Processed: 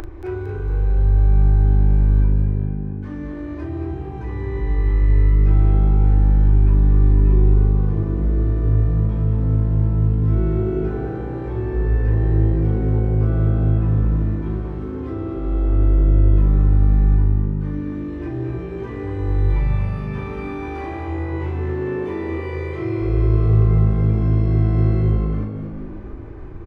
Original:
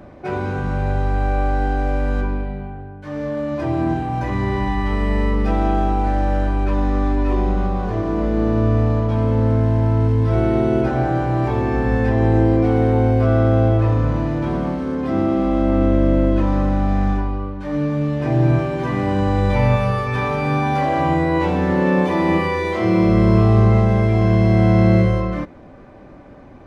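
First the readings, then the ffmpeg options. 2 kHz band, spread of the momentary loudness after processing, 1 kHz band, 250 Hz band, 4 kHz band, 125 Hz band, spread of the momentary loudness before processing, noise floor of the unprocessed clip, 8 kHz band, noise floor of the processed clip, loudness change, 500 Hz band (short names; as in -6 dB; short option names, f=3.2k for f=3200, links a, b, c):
-11.0 dB, 12 LU, -13.5 dB, -6.5 dB, under -10 dB, +0.5 dB, 9 LU, -41 dBFS, n/a, -30 dBFS, -1.0 dB, -7.5 dB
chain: -filter_complex "[0:a]firequalizer=gain_entry='entry(110,0);entry(160,-30);entry(340,-2);entry(560,-27);entry(920,-19);entry(4400,-26)':delay=0.05:min_phase=1,acompressor=mode=upward:threshold=-25dB:ratio=2.5,equalizer=f=160:t=o:w=2.8:g=-13,asplit=2[a][b];[b]adelay=38,volume=-7dB[c];[a][c]amix=inputs=2:normalize=0,asplit=2[d][e];[e]asplit=6[f][g][h][i][j][k];[f]adelay=228,afreqshift=51,volume=-9dB[l];[g]adelay=456,afreqshift=102,volume=-14.7dB[m];[h]adelay=684,afreqshift=153,volume=-20.4dB[n];[i]adelay=912,afreqshift=204,volume=-26dB[o];[j]adelay=1140,afreqshift=255,volume=-31.7dB[p];[k]adelay=1368,afreqshift=306,volume=-37.4dB[q];[l][m][n][o][p][q]amix=inputs=6:normalize=0[r];[d][r]amix=inputs=2:normalize=0,volume=8.5dB"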